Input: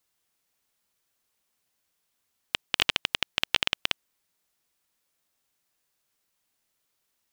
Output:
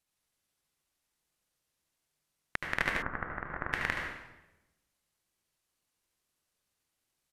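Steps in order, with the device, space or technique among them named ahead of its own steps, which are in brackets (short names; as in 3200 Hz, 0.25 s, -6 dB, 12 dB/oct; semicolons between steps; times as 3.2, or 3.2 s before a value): monster voice (pitch shift -8.5 st; low shelf 190 Hz +6.5 dB; echo 73 ms -9.5 dB; reverb RT60 1.0 s, pre-delay 73 ms, DRR 1.5 dB); 3.02–3.73 Chebyshev low-pass 1400 Hz, order 3; gain -8 dB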